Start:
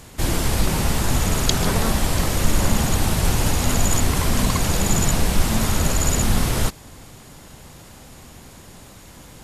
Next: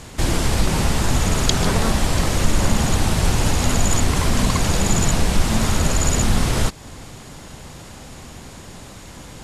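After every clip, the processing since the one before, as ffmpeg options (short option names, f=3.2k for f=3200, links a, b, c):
-filter_complex "[0:a]lowpass=9.4k,asplit=2[a][b];[b]acompressor=threshold=-25dB:ratio=6,volume=0dB[c];[a][c]amix=inputs=2:normalize=0,volume=-1dB"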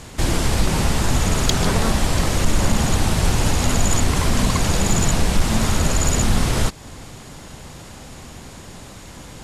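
-af "volume=7.5dB,asoftclip=hard,volume=-7.5dB"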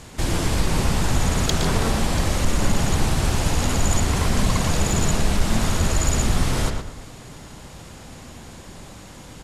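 -filter_complex "[0:a]asplit=2[a][b];[b]adelay=116,lowpass=f=3.3k:p=1,volume=-4.5dB,asplit=2[c][d];[d]adelay=116,lowpass=f=3.3k:p=1,volume=0.34,asplit=2[e][f];[f]adelay=116,lowpass=f=3.3k:p=1,volume=0.34,asplit=2[g][h];[h]adelay=116,lowpass=f=3.3k:p=1,volume=0.34[i];[a][c][e][g][i]amix=inputs=5:normalize=0,volume=-3.5dB"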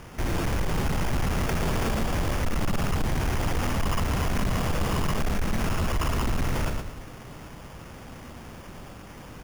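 -af "acrusher=samples=11:mix=1:aa=0.000001,asoftclip=type=tanh:threshold=-18dB,volume=-2dB"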